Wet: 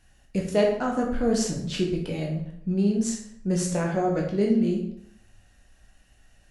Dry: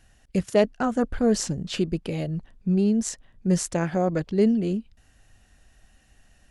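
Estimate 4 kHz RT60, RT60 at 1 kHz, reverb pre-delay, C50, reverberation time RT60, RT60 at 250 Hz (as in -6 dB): 0.55 s, 0.65 s, 9 ms, 5.0 dB, 0.65 s, 0.70 s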